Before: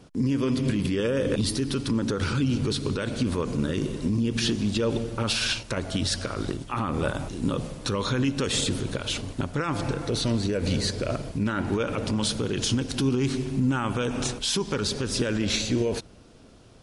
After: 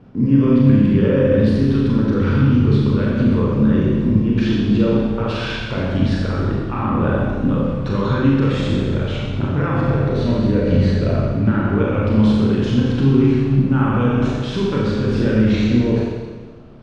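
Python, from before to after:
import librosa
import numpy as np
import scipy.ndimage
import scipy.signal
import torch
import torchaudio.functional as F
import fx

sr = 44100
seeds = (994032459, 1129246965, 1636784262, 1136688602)

y = scipy.signal.sosfilt(scipy.signal.butter(2, 2000.0, 'lowpass', fs=sr, output='sos'), x)
y = fx.peak_eq(y, sr, hz=130.0, db=6.0, octaves=1.7)
y = fx.rev_schroeder(y, sr, rt60_s=1.4, comb_ms=29, drr_db=-4.5)
y = y * 10.0 ** (1.5 / 20.0)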